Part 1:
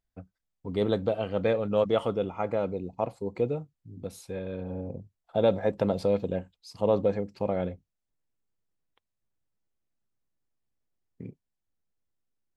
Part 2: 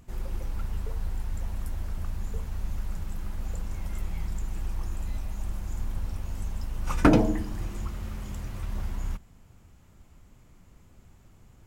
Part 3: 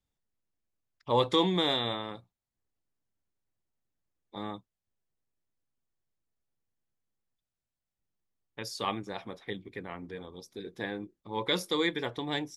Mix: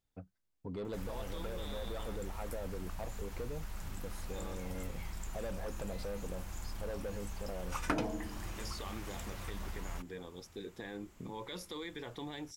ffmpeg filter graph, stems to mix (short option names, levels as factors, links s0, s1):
-filter_complex "[0:a]asoftclip=type=tanh:threshold=0.0668,volume=0.631[s0];[1:a]lowshelf=f=480:g=-11,adelay=850,volume=1.33[s1];[2:a]acompressor=threshold=0.0251:ratio=6,volume=0.75[s2];[s0][s2]amix=inputs=2:normalize=0,alimiter=level_in=2.66:limit=0.0631:level=0:latency=1:release=21,volume=0.376,volume=1[s3];[s1][s3]amix=inputs=2:normalize=0,acompressor=threshold=0.0112:ratio=2"